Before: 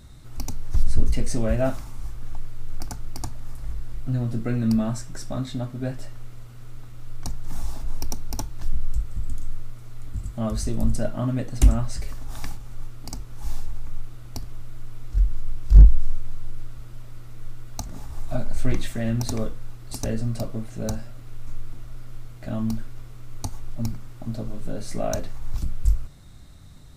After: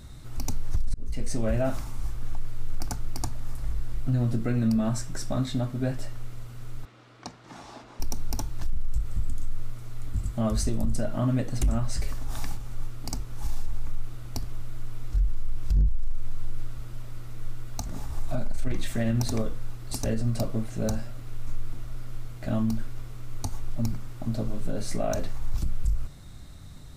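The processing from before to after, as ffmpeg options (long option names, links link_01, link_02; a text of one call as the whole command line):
ffmpeg -i in.wav -filter_complex "[0:a]asettb=1/sr,asplit=3[link_01][link_02][link_03];[link_01]atrim=end=6.854[link_04];[link_02]atrim=start=6.85:end=8,asetpts=PTS-STARTPTS,afade=type=in:duration=0.004:curve=qsin,afade=type=out:start_time=1.146:duration=0.004:curve=qsin,highpass=280,lowpass=4100[link_05];[link_03]atrim=start=7.996[link_06];[link_04][link_05]acrossfade=duration=0.004:curve1=hsin:curve2=qsin[link_07];[link_07][link_06]acrossfade=duration=0.004:curve1=qsin:curve2=hsin,asplit=2[link_08][link_09];[link_08]atrim=end=0.94,asetpts=PTS-STARTPTS,afade=type=out:start_time=0.936:duration=0.004:curve=hsin[link_10];[link_09]atrim=start=0.94,asetpts=PTS-STARTPTS,afade=type=in:duration=0.65[link_11];[link_10][link_11]concat=n=2:v=0:a=1,acontrast=77,alimiter=limit=-12dB:level=0:latency=1:release=83,volume=-5dB" out.wav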